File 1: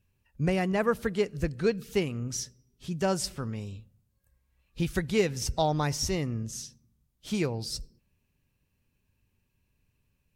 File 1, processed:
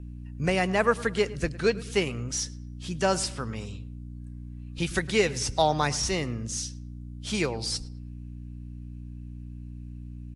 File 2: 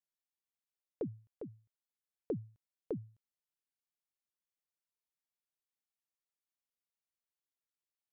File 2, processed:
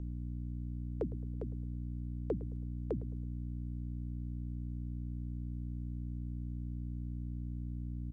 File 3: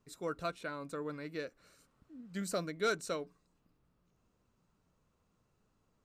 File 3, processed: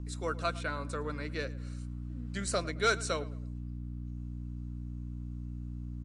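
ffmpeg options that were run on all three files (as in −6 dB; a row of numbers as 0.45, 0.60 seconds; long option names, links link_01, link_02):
-filter_complex "[0:a]lowshelf=frequency=450:gain=-10,aeval=exprs='val(0)+0.00562*(sin(2*PI*60*n/s)+sin(2*PI*2*60*n/s)/2+sin(2*PI*3*60*n/s)/3+sin(2*PI*4*60*n/s)/4+sin(2*PI*5*60*n/s)/5)':channel_layout=same,acrossover=split=380|2900[link_01][link_02][link_03];[link_03]asoftclip=type=hard:threshold=-34.5dB[link_04];[link_01][link_02][link_04]amix=inputs=3:normalize=0,asplit=2[link_05][link_06];[link_06]adelay=108,lowpass=frequency=2600:poles=1,volume=-18dB,asplit=2[link_07][link_08];[link_08]adelay=108,lowpass=frequency=2600:poles=1,volume=0.39,asplit=2[link_09][link_10];[link_10]adelay=108,lowpass=frequency=2600:poles=1,volume=0.39[link_11];[link_05][link_07][link_09][link_11]amix=inputs=4:normalize=0,volume=7.5dB" -ar 24000 -c:a libmp3lame -b:a 64k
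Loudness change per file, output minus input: +2.5, +3.0, +2.5 LU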